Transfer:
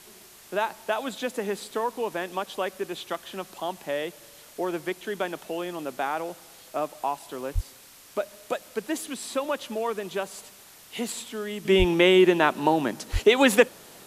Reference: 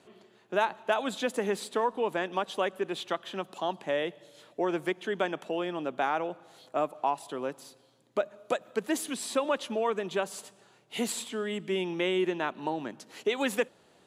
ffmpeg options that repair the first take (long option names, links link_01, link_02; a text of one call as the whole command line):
ffmpeg -i in.wav -filter_complex "[0:a]asplit=3[link_01][link_02][link_03];[link_01]afade=type=out:start_time=7.54:duration=0.02[link_04];[link_02]highpass=frequency=140:width=0.5412,highpass=frequency=140:width=1.3066,afade=type=in:start_time=7.54:duration=0.02,afade=type=out:start_time=7.66:duration=0.02[link_05];[link_03]afade=type=in:start_time=7.66:duration=0.02[link_06];[link_04][link_05][link_06]amix=inputs=3:normalize=0,asplit=3[link_07][link_08][link_09];[link_07]afade=type=out:start_time=11.78:duration=0.02[link_10];[link_08]highpass=frequency=140:width=0.5412,highpass=frequency=140:width=1.3066,afade=type=in:start_time=11.78:duration=0.02,afade=type=out:start_time=11.9:duration=0.02[link_11];[link_09]afade=type=in:start_time=11.9:duration=0.02[link_12];[link_10][link_11][link_12]amix=inputs=3:normalize=0,asplit=3[link_13][link_14][link_15];[link_13]afade=type=out:start_time=13.12:duration=0.02[link_16];[link_14]highpass=frequency=140:width=0.5412,highpass=frequency=140:width=1.3066,afade=type=in:start_time=13.12:duration=0.02,afade=type=out:start_time=13.24:duration=0.02[link_17];[link_15]afade=type=in:start_time=13.24:duration=0.02[link_18];[link_16][link_17][link_18]amix=inputs=3:normalize=0,afwtdn=0.0035,asetnsamples=nb_out_samples=441:pad=0,asendcmd='11.65 volume volume -10.5dB',volume=0dB" out.wav